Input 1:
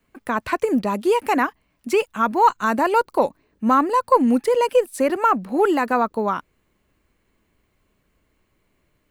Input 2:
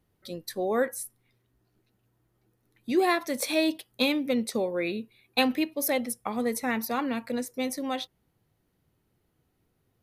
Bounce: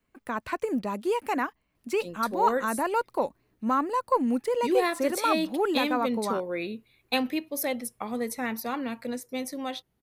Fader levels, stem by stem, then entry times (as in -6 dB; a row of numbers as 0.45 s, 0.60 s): -8.5 dB, -2.5 dB; 0.00 s, 1.75 s